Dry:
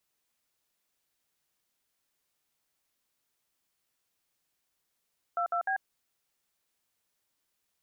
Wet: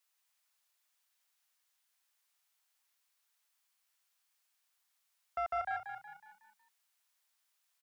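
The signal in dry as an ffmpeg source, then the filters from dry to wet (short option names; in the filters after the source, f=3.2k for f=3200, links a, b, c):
-f lavfi -i "aevalsrc='0.0335*clip(min(mod(t,0.151),0.092-mod(t,0.151))/0.002,0,1)*(eq(floor(t/0.151),0)*(sin(2*PI*697*mod(t,0.151))+sin(2*PI*1336*mod(t,0.151)))+eq(floor(t/0.151),1)*(sin(2*PI*697*mod(t,0.151))+sin(2*PI*1336*mod(t,0.151)))+eq(floor(t/0.151),2)*(sin(2*PI*770*mod(t,0.151))+sin(2*PI*1633*mod(t,0.151))))':d=0.453:s=44100"
-filter_complex "[0:a]acrossover=split=660|840[a][b][c];[a]acrusher=bits=5:mix=0:aa=0.5[d];[c]alimiter=level_in=14dB:limit=-24dB:level=0:latency=1:release=66,volume=-14dB[e];[d][b][e]amix=inputs=3:normalize=0,asplit=6[f][g][h][i][j][k];[g]adelay=184,afreqshift=31,volume=-8dB[l];[h]adelay=368,afreqshift=62,volume=-14.9dB[m];[i]adelay=552,afreqshift=93,volume=-21.9dB[n];[j]adelay=736,afreqshift=124,volume=-28.8dB[o];[k]adelay=920,afreqshift=155,volume=-35.7dB[p];[f][l][m][n][o][p]amix=inputs=6:normalize=0"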